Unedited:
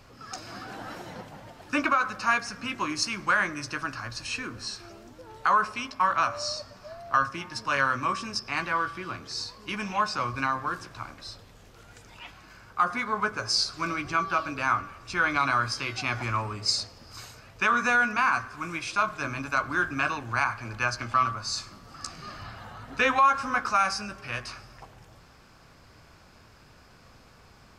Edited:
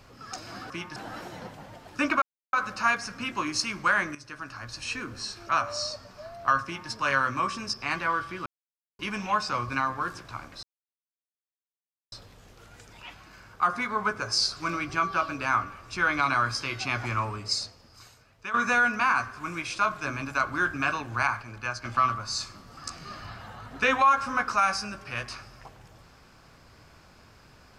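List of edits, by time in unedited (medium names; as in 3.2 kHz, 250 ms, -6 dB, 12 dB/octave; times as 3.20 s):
1.96 s: insert silence 0.31 s
3.58–4.40 s: fade in, from -14 dB
4.92–6.15 s: delete
7.30–7.56 s: copy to 0.70 s
9.12–9.65 s: mute
11.29 s: insert silence 1.49 s
16.46–17.71 s: fade out quadratic, to -11.5 dB
20.59–21.02 s: gain -5 dB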